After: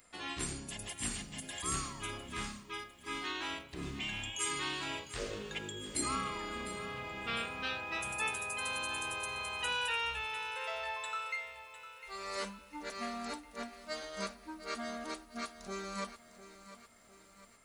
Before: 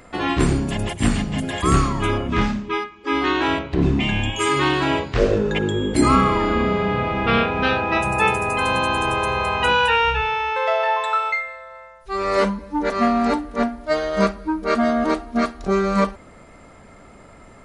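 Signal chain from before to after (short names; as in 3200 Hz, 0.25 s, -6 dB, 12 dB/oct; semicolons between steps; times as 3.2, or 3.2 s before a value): pre-emphasis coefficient 0.9; lo-fi delay 0.703 s, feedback 55%, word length 9-bit, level -13.5 dB; gain -5 dB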